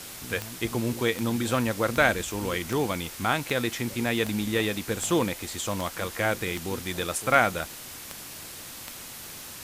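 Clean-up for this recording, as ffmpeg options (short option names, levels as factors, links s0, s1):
-af "adeclick=t=4,afwtdn=0.01"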